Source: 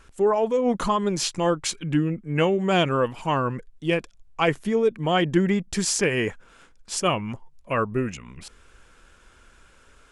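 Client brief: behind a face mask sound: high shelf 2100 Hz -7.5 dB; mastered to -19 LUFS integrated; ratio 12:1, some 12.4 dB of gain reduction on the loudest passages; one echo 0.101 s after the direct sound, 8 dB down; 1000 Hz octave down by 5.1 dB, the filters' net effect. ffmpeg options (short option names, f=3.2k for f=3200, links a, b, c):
-af "equalizer=f=1k:t=o:g=-5,acompressor=threshold=-29dB:ratio=12,highshelf=f=2.1k:g=-7.5,aecho=1:1:101:0.398,volume=15.5dB"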